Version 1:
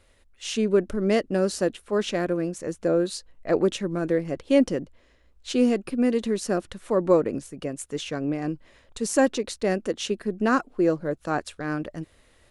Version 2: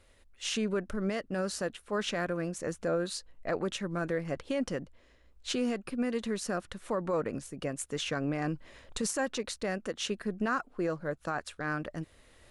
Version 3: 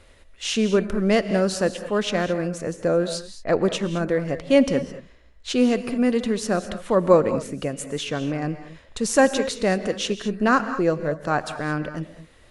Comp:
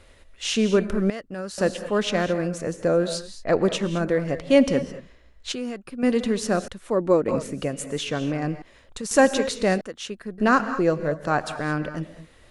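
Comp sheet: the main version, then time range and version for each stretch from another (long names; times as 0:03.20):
3
0:01.10–0:01.58: punch in from 2
0:05.52–0:06.03: punch in from 2
0:06.68–0:07.28: punch in from 1
0:08.62–0:09.11: punch in from 2
0:09.81–0:10.38: punch in from 2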